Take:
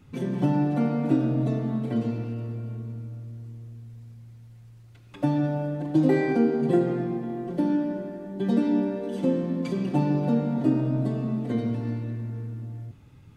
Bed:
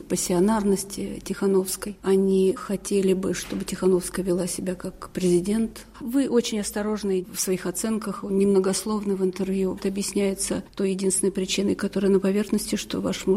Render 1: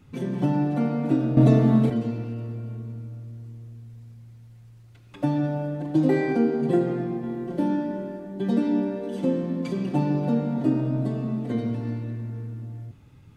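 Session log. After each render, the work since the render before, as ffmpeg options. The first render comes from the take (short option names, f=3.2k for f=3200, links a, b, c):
-filter_complex "[0:a]asettb=1/sr,asplit=3[a][b][c];[a]atrim=end=7.214[d];[b]atrim=start=7.21:end=8.2,asetpts=PTS-STARTPTS,afade=t=in:d=0.004:c=qsin,afade=t=out:st=0.986:d=0.004:c=qsin,asplit=2[e][f];[f]adelay=25,volume=-4.5dB[g];[e][g]amix=inputs=2:normalize=0,atrim=end_sample=43659[h];[c]atrim=start=8.196[i];[d][h]acrossfade=d=0.004:c1=hsin:c2=qsin[j];[j][i]acrossfade=d=0.004:c1=qsin:c2=hsin,asplit=3[k][l][m];[k]atrim=end=1.372[n];[l]atrim=start=1.368:end=1.902,asetpts=PTS-STARTPTS,volume=9.5dB[o];[m]atrim=start=1.898[p];[n][o]acrossfade=d=0.004:c1=hsin:c2=hsin[q];[q][p]acrossfade=d=0.004:c1=hsin:c2=hsin"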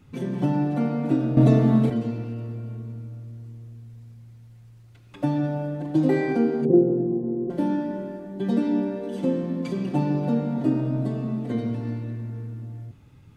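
-filter_complex "[0:a]asettb=1/sr,asplit=3[a][b][c];[a]atrim=end=6.654[d];[b]atrim=start=6.65:end=7.5,asetpts=PTS-STARTPTS,afade=t=in:d=0.004:c=qsin,afade=t=out:st=0.846:d=0.004:c=qsin,lowpass=f=430:t=q:w=2[e];[c]atrim=start=7.496[f];[d][e]acrossfade=d=0.004:c1=hsin:c2=qsin[g];[g][f]acrossfade=d=0.004:c1=qsin:c2=hsin"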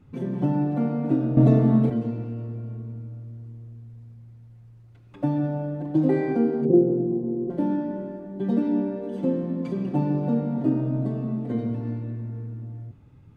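-af "highshelf=f=2k:g=-12"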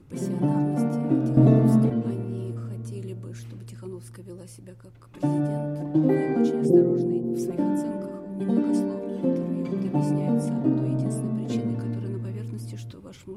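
-filter_complex "[1:a]volume=-18.5dB[a];[0:a][a]amix=inputs=2:normalize=0"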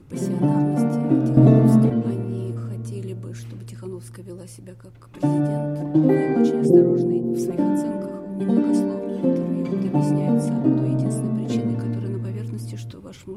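-af "volume=4dB,alimiter=limit=-3dB:level=0:latency=1"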